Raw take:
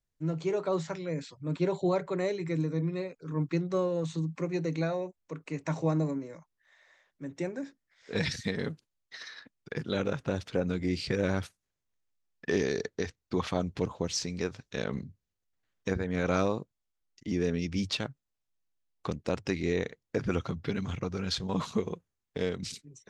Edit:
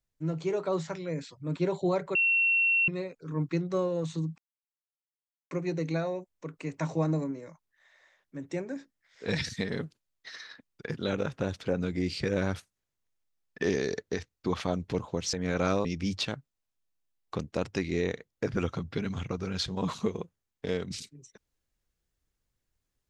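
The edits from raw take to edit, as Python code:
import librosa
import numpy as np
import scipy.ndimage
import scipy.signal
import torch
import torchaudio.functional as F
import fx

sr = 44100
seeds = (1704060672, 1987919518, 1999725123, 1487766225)

y = fx.edit(x, sr, fx.bleep(start_s=2.15, length_s=0.73, hz=2720.0, db=-21.5),
    fx.insert_silence(at_s=4.38, length_s=1.13),
    fx.cut(start_s=14.2, length_s=1.82),
    fx.cut(start_s=16.54, length_s=1.03), tone=tone)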